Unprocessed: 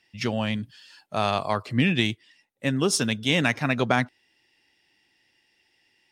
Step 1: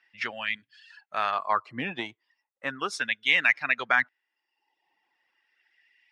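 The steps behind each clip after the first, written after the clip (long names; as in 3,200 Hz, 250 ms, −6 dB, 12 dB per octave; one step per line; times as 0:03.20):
auto-filter band-pass sine 0.36 Hz 930–2,100 Hz
reverb reduction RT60 0.85 s
level +7 dB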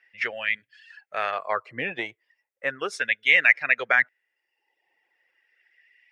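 graphic EQ with 10 bands 250 Hz −7 dB, 500 Hz +11 dB, 1,000 Hz −8 dB, 2,000 Hz +8 dB, 4,000 Hz −5 dB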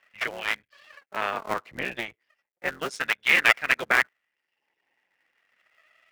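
sub-harmonics by changed cycles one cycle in 3, muted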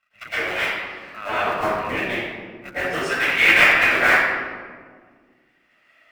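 convolution reverb RT60 1.7 s, pre-delay 105 ms, DRR −15.5 dB
level −11.5 dB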